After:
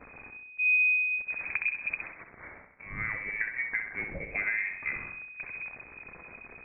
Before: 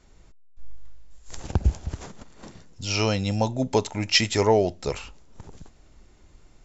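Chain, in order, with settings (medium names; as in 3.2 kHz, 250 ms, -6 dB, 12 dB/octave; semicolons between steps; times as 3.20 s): zero-crossing glitches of -20.5 dBFS; gate -41 dBFS, range -10 dB; 2.00–4.31 s: Chebyshev high-pass 310 Hz, order 2; compression 10:1, threshold -28 dBFS, peak gain reduction 14 dB; flutter echo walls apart 11.1 m, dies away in 0.59 s; frequency inversion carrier 2.5 kHz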